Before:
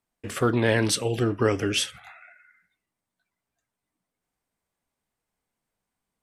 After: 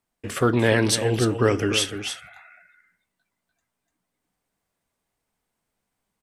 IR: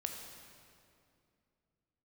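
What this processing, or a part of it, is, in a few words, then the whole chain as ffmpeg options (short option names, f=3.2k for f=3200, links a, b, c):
ducked delay: -filter_complex "[0:a]asplit=3[a][b][c];[b]adelay=295,volume=-3dB[d];[c]apad=whole_len=287634[e];[d][e]sidechaincompress=threshold=-26dB:ratio=4:attack=16:release=1480[f];[a][f]amix=inputs=2:normalize=0,volume=2.5dB"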